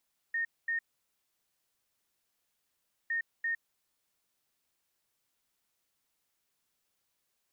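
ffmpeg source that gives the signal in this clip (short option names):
-f lavfi -i "aevalsrc='0.0355*sin(2*PI*1840*t)*clip(min(mod(mod(t,2.76),0.34),0.11-mod(mod(t,2.76),0.34))/0.005,0,1)*lt(mod(t,2.76),0.68)':d=5.52:s=44100"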